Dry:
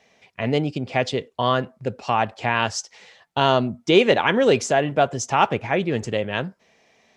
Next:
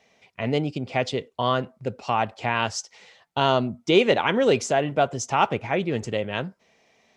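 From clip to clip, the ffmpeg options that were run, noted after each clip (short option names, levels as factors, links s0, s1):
-af "bandreject=f=1700:w=17,volume=0.75"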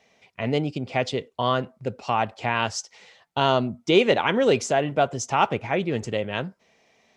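-af anull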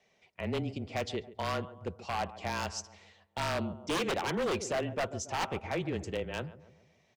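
-filter_complex "[0:a]asplit=2[s0][s1];[s1]adelay=139,lowpass=f=1100:p=1,volume=0.168,asplit=2[s2][s3];[s3]adelay=139,lowpass=f=1100:p=1,volume=0.54,asplit=2[s4][s5];[s5]adelay=139,lowpass=f=1100:p=1,volume=0.54,asplit=2[s6][s7];[s7]adelay=139,lowpass=f=1100:p=1,volume=0.54,asplit=2[s8][s9];[s9]adelay=139,lowpass=f=1100:p=1,volume=0.54[s10];[s0][s2][s4][s6][s8][s10]amix=inputs=6:normalize=0,afreqshift=-25,aeval=exprs='0.141*(abs(mod(val(0)/0.141+3,4)-2)-1)':c=same,volume=0.376"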